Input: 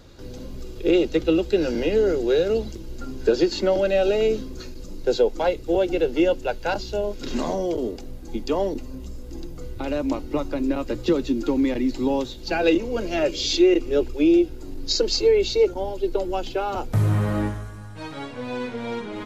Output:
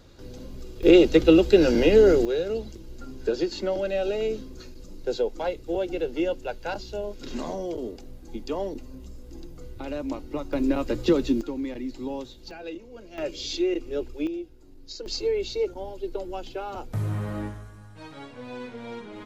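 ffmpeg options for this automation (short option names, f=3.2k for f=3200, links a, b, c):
-af "asetnsamples=n=441:p=0,asendcmd='0.83 volume volume 4dB;2.25 volume volume -6.5dB;10.53 volume volume 0dB;11.41 volume volume -10dB;12.51 volume volume -18dB;13.18 volume volume -8.5dB;14.27 volume volume -16.5dB;15.06 volume volume -8dB',volume=-4dB"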